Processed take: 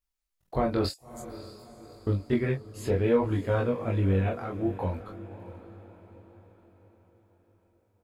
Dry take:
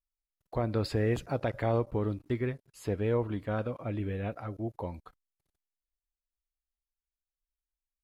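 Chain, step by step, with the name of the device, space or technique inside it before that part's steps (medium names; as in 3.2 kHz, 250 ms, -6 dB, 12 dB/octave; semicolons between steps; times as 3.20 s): 0.89–2.07 s: inverse Chebyshev high-pass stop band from 1.2 kHz, stop band 80 dB; double-tracked vocal (doubling 21 ms -3 dB; chorus 0.55 Hz, delay 16.5 ms, depth 7.4 ms); echo that smears into a reverb 613 ms, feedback 47%, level -14.5 dB; trim +7 dB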